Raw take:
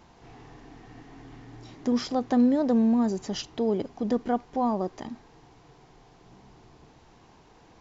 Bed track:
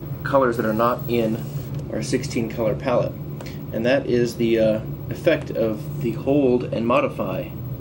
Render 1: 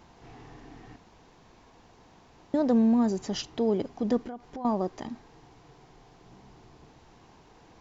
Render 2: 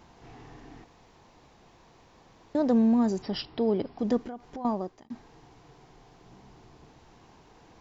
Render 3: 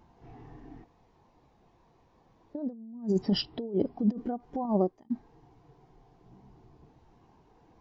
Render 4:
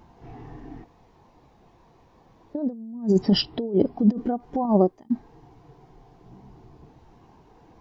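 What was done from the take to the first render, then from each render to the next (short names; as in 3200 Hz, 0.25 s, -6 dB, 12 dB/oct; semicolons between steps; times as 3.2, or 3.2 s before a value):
0.96–2.54 room tone; 4.19–4.65 compressor, threshold -35 dBFS
0.84–2.55 room tone; 3.22–3.99 brick-wall FIR low-pass 5600 Hz; 4.63–5.1 fade out
negative-ratio compressor -30 dBFS, ratio -0.5; spectral expander 1.5:1
gain +7.5 dB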